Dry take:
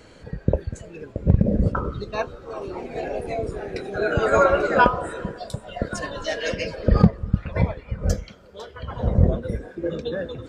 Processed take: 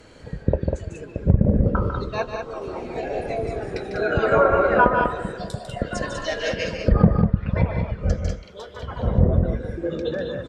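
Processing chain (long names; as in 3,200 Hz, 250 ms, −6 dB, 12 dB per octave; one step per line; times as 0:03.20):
loudspeakers that aren't time-aligned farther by 51 metres −8 dB, 67 metres −6 dB
treble cut that deepens with the level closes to 1,600 Hz, closed at −12 dBFS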